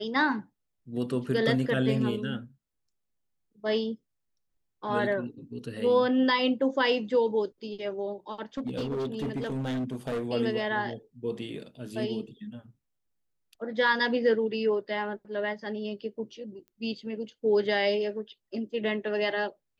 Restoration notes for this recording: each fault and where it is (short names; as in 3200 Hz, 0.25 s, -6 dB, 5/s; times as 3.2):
8.57–10.26 clipped -27.5 dBFS
16.68 pop -38 dBFS